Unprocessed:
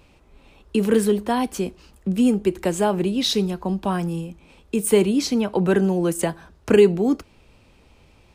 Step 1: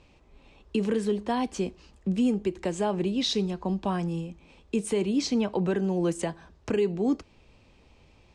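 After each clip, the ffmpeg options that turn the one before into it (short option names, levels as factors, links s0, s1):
-af "lowpass=f=7700:w=0.5412,lowpass=f=7700:w=1.3066,equalizer=f=1400:t=o:w=0.21:g=-5,alimiter=limit=0.224:level=0:latency=1:release=280,volume=0.631"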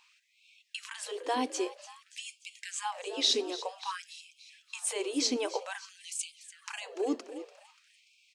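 -filter_complex "[0:a]highshelf=f=3700:g=8,asplit=7[s0][s1][s2][s3][s4][s5][s6];[s1]adelay=291,afreqshift=46,volume=0.168[s7];[s2]adelay=582,afreqshift=92,volume=0.0955[s8];[s3]adelay=873,afreqshift=138,volume=0.0543[s9];[s4]adelay=1164,afreqshift=184,volume=0.0313[s10];[s5]adelay=1455,afreqshift=230,volume=0.0178[s11];[s6]adelay=1746,afreqshift=276,volume=0.0101[s12];[s0][s7][s8][s9][s10][s11][s12]amix=inputs=7:normalize=0,afftfilt=real='re*gte(b*sr/1024,250*pow(2200/250,0.5+0.5*sin(2*PI*0.52*pts/sr)))':imag='im*gte(b*sr/1024,250*pow(2200/250,0.5+0.5*sin(2*PI*0.52*pts/sr)))':win_size=1024:overlap=0.75,volume=0.794"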